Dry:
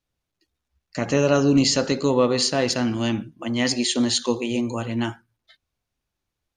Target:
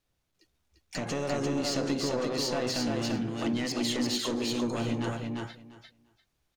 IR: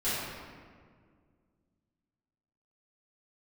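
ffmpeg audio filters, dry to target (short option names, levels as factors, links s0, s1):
-filter_complex "[0:a]acrossover=split=5300[s0][s1];[s1]acompressor=threshold=0.0282:ratio=4:attack=1:release=60[s2];[s0][s2]amix=inputs=2:normalize=0,asplit=2[s3][s4];[s4]alimiter=limit=0.2:level=0:latency=1,volume=0.708[s5];[s3][s5]amix=inputs=2:normalize=0,acompressor=threshold=0.0708:ratio=10,asoftclip=type=tanh:threshold=0.0668,asplit=3[s6][s7][s8];[s7]asetrate=55563,aresample=44100,atempo=0.793701,volume=0.316[s9];[s8]asetrate=66075,aresample=44100,atempo=0.66742,volume=0.141[s10];[s6][s9][s10]amix=inputs=3:normalize=0,asplit=2[s11][s12];[s12]aecho=0:1:346|692|1038:0.708|0.113|0.0181[s13];[s11][s13]amix=inputs=2:normalize=0,volume=0.75"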